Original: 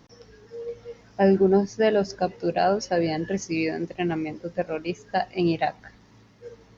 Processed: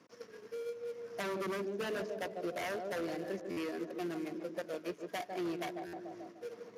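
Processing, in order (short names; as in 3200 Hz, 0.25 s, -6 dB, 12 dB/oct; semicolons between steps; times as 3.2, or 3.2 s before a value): switching dead time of 0.19 ms; bell 3700 Hz -5 dB 0.7 oct; tape echo 0.148 s, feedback 66%, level -7.5 dB, low-pass 1100 Hz; gate -49 dBFS, range -7 dB; HPF 280 Hz 12 dB/oct; wavefolder -20.5 dBFS; notch 810 Hz, Q 5.3; compressor 2.5:1, threshold -46 dBFS, peak gain reduction 14.5 dB; stuck buffer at 3.5/5.86, samples 512, times 5; gain +3 dB; Speex 36 kbps 32000 Hz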